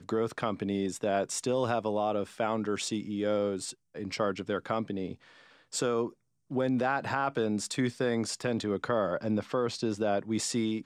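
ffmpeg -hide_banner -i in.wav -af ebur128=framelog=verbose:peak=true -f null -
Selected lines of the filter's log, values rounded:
Integrated loudness:
  I:         -31.3 LUFS
  Threshold: -41.4 LUFS
Loudness range:
  LRA:         2.9 LU
  Threshold: -51.6 LUFS
  LRA low:   -33.5 LUFS
  LRA high:  -30.6 LUFS
True peak:
  Peak:      -16.6 dBFS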